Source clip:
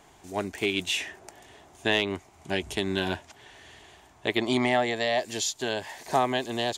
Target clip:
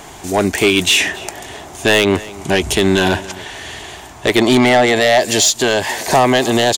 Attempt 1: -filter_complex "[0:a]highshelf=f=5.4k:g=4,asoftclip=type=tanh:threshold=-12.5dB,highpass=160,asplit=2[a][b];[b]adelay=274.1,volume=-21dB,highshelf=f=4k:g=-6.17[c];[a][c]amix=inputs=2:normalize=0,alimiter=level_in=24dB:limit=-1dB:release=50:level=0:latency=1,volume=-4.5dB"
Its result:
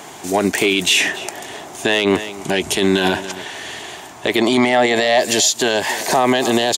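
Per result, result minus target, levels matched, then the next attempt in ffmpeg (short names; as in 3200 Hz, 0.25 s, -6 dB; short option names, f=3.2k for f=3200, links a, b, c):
soft clip: distortion -11 dB; 125 Hz band -4.0 dB
-filter_complex "[0:a]highshelf=f=5.4k:g=4,asoftclip=type=tanh:threshold=-21.5dB,highpass=160,asplit=2[a][b];[b]adelay=274.1,volume=-21dB,highshelf=f=4k:g=-6.17[c];[a][c]amix=inputs=2:normalize=0,alimiter=level_in=24dB:limit=-1dB:release=50:level=0:latency=1,volume=-4.5dB"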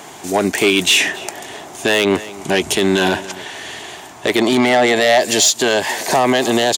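125 Hz band -4.5 dB
-filter_complex "[0:a]highshelf=f=5.4k:g=4,asoftclip=type=tanh:threshold=-21.5dB,asplit=2[a][b];[b]adelay=274.1,volume=-21dB,highshelf=f=4k:g=-6.17[c];[a][c]amix=inputs=2:normalize=0,alimiter=level_in=24dB:limit=-1dB:release=50:level=0:latency=1,volume=-4.5dB"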